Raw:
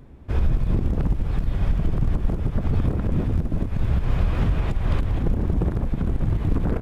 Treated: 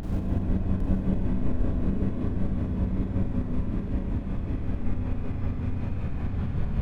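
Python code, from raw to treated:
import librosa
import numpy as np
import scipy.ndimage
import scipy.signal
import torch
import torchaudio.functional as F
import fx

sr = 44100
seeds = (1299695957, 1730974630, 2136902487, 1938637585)

p1 = fx.lowpass(x, sr, hz=3200.0, slope=6)
p2 = fx.paulstretch(p1, sr, seeds[0], factor=45.0, window_s=0.25, from_s=3.59)
p3 = fx.rev_schroeder(p2, sr, rt60_s=1.7, comb_ms=32, drr_db=-5.5)
p4 = fx.volume_shaper(p3, sr, bpm=158, per_beat=2, depth_db=-5, release_ms=116.0, shape='slow start')
p5 = p4 + fx.echo_feedback(p4, sr, ms=804, feedback_pct=40, wet_db=-9.0, dry=0)
y = F.gain(torch.from_numpy(p5), -7.5).numpy()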